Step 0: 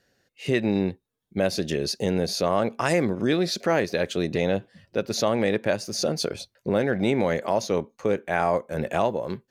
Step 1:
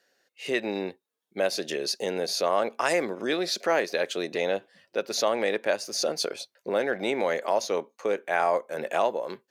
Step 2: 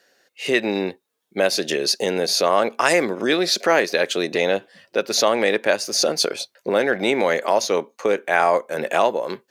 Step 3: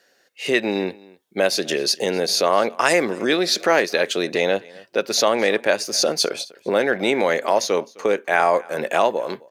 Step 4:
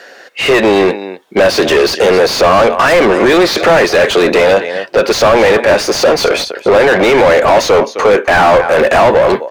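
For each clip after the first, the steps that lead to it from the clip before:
HPF 430 Hz 12 dB/oct
dynamic EQ 640 Hz, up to -3 dB, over -33 dBFS, Q 0.99; gain +9 dB
echo 0.259 s -23.5 dB
overdrive pedal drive 34 dB, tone 1300 Hz, clips at -1.5 dBFS; gain +2.5 dB

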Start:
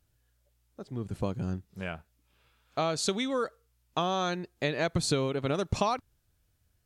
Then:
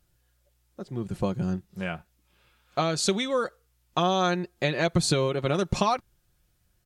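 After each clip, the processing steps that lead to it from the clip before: comb 5.6 ms, depth 44%; gain +3.5 dB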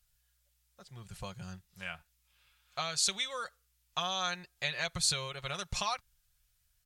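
passive tone stack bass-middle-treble 10-0-10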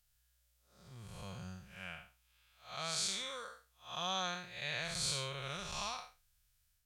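time blur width 0.192 s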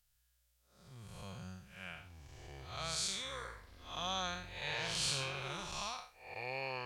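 echoes that change speed 0.75 s, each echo -6 st, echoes 2; gain -1 dB

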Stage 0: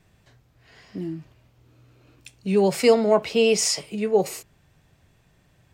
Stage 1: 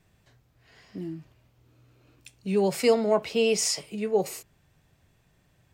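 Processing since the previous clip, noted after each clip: high shelf 11000 Hz +4.5 dB; gain -4.5 dB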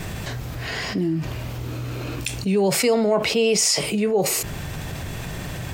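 fast leveller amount 70%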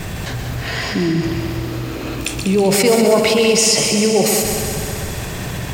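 multi-head echo 64 ms, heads second and third, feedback 70%, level -8 dB; gain +4.5 dB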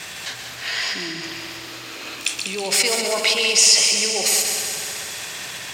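band-pass 4600 Hz, Q 0.56; gain +2.5 dB

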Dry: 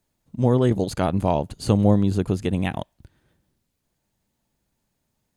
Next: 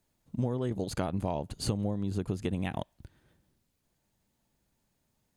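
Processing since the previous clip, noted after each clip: compressor 12:1, threshold -25 dBFS, peak gain reduction 15.5 dB; gain -1.5 dB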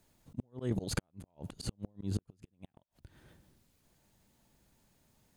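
flipped gate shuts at -20 dBFS, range -41 dB; auto swell 0.206 s; gain +6.5 dB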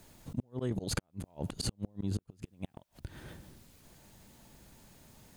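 compressor 4:1, threshold -45 dBFS, peak gain reduction 15 dB; gain +12 dB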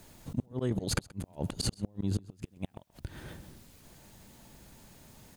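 echo 0.129 s -22.5 dB; gain +3 dB

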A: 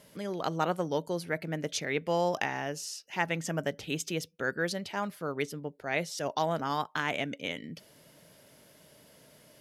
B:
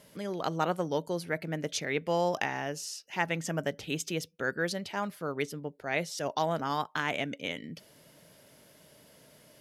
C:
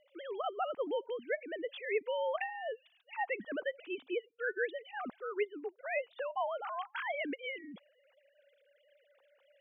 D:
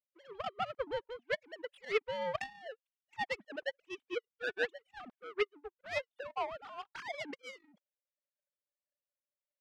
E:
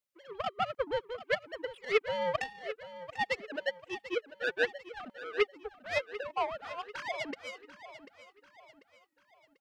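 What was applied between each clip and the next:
nothing audible
sine-wave speech; harmonic-percussive split harmonic -4 dB; gain -2.5 dB
power-law curve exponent 2; gain +5.5 dB
feedback echo 0.742 s, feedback 42%, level -14 dB; gain +4.5 dB

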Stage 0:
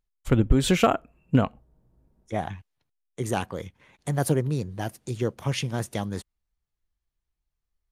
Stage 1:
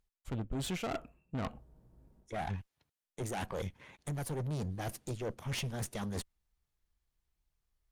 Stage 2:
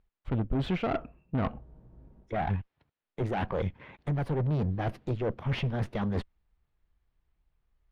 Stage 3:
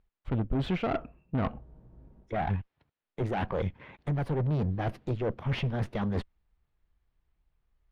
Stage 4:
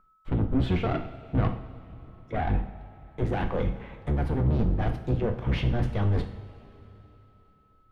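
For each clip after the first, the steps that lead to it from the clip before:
reverse; compressor 16:1, threshold -31 dBFS, peak gain reduction 20 dB; reverse; tube stage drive 37 dB, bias 0.65; gain +5 dB
air absorption 370 m; gain +8.5 dB
nothing audible
octaver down 1 oct, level +3 dB; whine 1300 Hz -59 dBFS; two-slope reverb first 0.53 s, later 3.6 s, from -16 dB, DRR 4.5 dB

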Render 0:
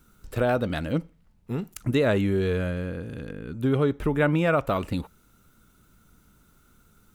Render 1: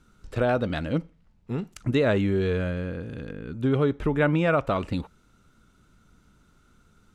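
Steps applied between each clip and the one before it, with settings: LPF 6600 Hz 12 dB/oct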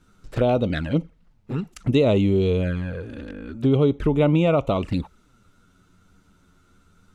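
envelope flanger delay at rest 11.8 ms, full sweep at -22 dBFS; gain +5 dB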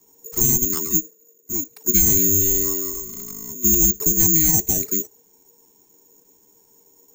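careless resampling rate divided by 6×, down filtered, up zero stuff; frequency shift -480 Hz; gain -6 dB

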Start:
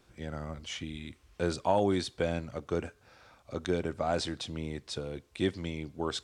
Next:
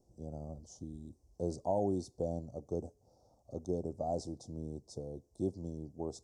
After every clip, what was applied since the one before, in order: Chebyshev band-stop 750–5700 Hz, order 3; high shelf 6600 Hz -7.5 dB; gain -4.5 dB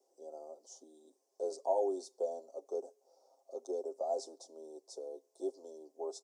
steep high-pass 380 Hz 36 dB/oct; comb 7.5 ms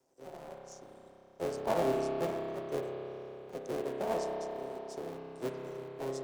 cycle switcher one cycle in 3, muted; low shelf 230 Hz +5.5 dB; spring tank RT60 3.8 s, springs 30 ms, chirp 25 ms, DRR 0 dB; gain +1 dB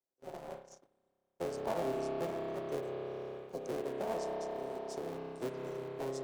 spectral repair 3.36–3.65, 1100–3800 Hz before; compressor 2:1, threshold -42 dBFS, peak gain reduction 9.5 dB; gate -47 dBFS, range -27 dB; gain +3.5 dB

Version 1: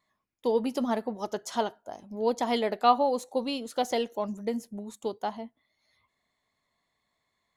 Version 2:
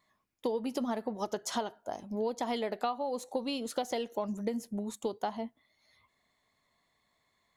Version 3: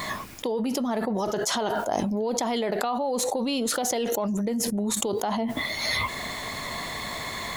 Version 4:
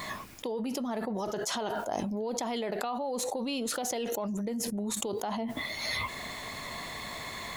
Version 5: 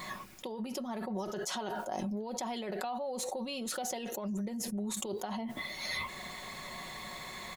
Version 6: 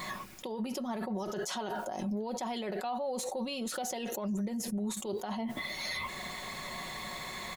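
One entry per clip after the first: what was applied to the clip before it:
compressor 16:1, threshold -32 dBFS, peak gain reduction 18 dB; gain +3 dB
fast leveller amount 100%; gain +2 dB
dynamic EQ 2600 Hz, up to +4 dB, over -51 dBFS, Q 7.7; gain -6.5 dB
comb 5.4 ms, depth 51%; gain -5 dB
limiter -30.5 dBFS, peak gain reduction 9.5 dB; gain +3 dB

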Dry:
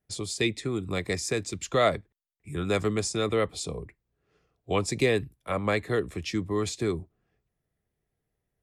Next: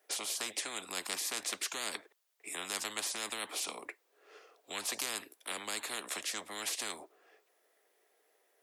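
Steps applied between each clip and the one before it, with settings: inverse Chebyshev high-pass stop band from 160 Hz, stop band 50 dB; spectral compressor 10:1; gain -3.5 dB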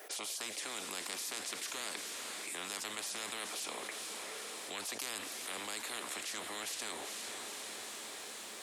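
diffused feedback echo 0.463 s, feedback 62%, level -10 dB; fast leveller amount 70%; gain -6.5 dB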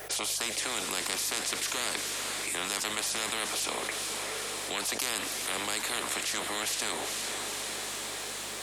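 buzz 50 Hz, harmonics 3, -68 dBFS -1 dB/oct; gain +9 dB

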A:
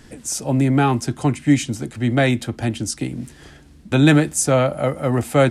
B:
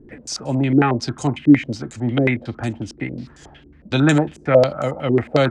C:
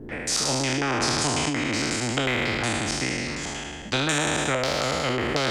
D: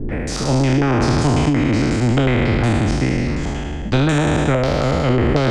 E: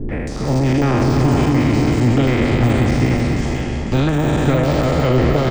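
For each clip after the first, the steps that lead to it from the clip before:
stepped low-pass 11 Hz 370–6900 Hz; gain -2.5 dB
spectral trails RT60 1.38 s; compressor, threshold -15 dBFS, peak gain reduction 9.5 dB; spectral compressor 2:1; gain +1.5 dB
tilt -3.5 dB/oct; gain +4.5 dB
de-esser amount 75%; notch 1500 Hz, Q 17; tapped delay 0.304/0.502 s -8.5/-5.5 dB

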